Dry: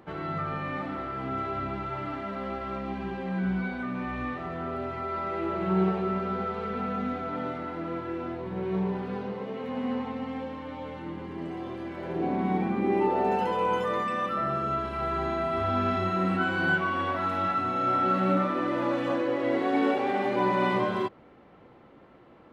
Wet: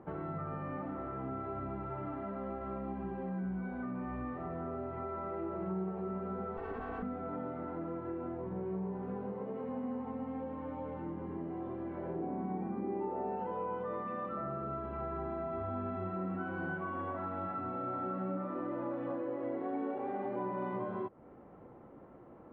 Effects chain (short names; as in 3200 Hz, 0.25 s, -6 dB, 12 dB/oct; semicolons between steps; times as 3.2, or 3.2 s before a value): 6.57–7.03 minimum comb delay 2.7 ms; LPF 1100 Hz 12 dB/oct; compressor 3:1, threshold -38 dBFS, peak gain reduction 13 dB